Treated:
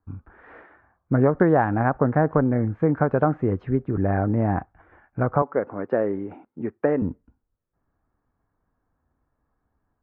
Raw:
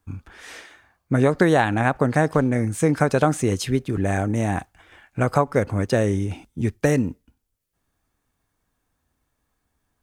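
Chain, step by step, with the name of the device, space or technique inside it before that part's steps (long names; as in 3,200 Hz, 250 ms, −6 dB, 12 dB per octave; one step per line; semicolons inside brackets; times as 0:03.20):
0:05.42–0:07.02: high-pass filter 300 Hz 12 dB per octave
action camera in a waterproof case (low-pass filter 1,500 Hz 24 dB per octave; automatic gain control gain up to 4 dB; level −3 dB; AAC 128 kbit/s 48,000 Hz)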